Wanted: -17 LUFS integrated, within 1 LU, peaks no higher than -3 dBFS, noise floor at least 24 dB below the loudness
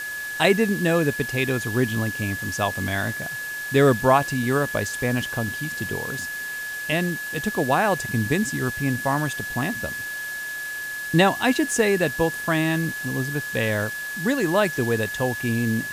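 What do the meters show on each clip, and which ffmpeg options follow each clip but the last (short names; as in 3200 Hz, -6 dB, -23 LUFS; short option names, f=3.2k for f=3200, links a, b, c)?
steady tone 1700 Hz; tone level -29 dBFS; noise floor -31 dBFS; noise floor target -48 dBFS; loudness -23.5 LUFS; peak -4.5 dBFS; loudness target -17.0 LUFS
-> -af "bandreject=f=1.7k:w=30"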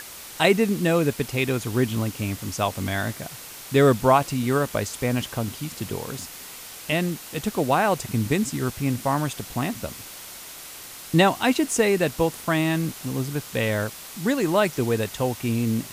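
steady tone none; noise floor -40 dBFS; noise floor target -48 dBFS
-> -af "afftdn=nr=8:nf=-40"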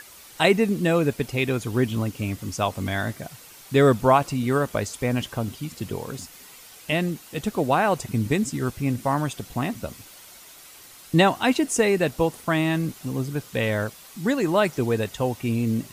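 noise floor -47 dBFS; noise floor target -48 dBFS
-> -af "afftdn=nr=6:nf=-47"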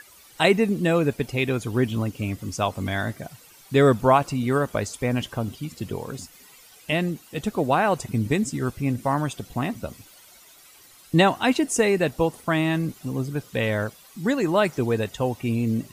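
noise floor -51 dBFS; loudness -24.0 LUFS; peak -5.0 dBFS; loudness target -17.0 LUFS
-> -af "volume=7dB,alimiter=limit=-3dB:level=0:latency=1"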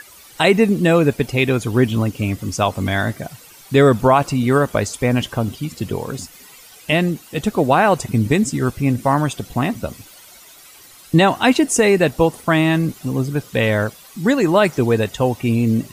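loudness -17.5 LUFS; peak -3.0 dBFS; noise floor -44 dBFS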